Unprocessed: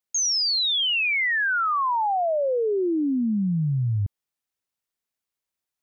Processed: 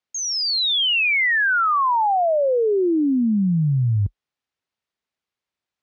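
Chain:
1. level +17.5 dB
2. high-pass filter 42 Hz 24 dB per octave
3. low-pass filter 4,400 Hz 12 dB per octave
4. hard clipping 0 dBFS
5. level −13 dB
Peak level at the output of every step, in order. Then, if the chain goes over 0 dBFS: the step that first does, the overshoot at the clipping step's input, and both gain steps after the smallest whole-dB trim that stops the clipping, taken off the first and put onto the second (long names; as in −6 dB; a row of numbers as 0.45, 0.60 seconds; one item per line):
−2.5, −2.5, −2.5, −2.5, −15.5 dBFS
no step passes full scale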